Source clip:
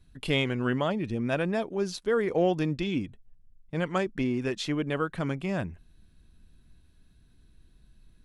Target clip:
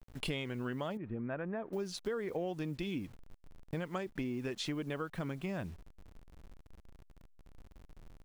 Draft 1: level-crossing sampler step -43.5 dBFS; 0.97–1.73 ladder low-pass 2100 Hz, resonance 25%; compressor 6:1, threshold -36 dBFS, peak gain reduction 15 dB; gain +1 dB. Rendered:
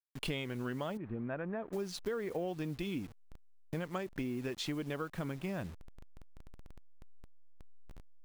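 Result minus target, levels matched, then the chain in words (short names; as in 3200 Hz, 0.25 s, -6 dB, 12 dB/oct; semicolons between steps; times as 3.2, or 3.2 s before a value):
level-crossing sampler: distortion +8 dB
level-crossing sampler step -50.5 dBFS; 0.97–1.73 ladder low-pass 2100 Hz, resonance 25%; compressor 6:1, threshold -36 dBFS, peak gain reduction 15 dB; gain +1 dB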